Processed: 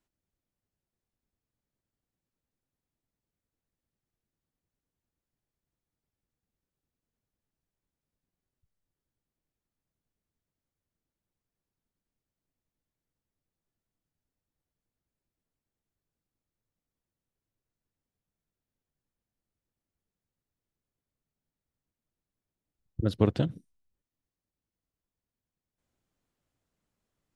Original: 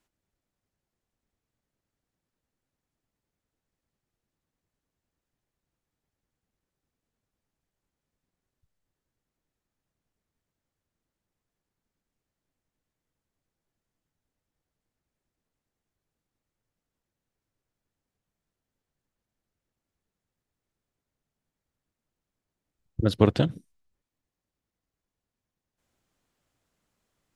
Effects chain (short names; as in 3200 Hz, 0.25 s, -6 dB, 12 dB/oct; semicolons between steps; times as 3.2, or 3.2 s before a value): low shelf 500 Hz +5 dB; gain -8 dB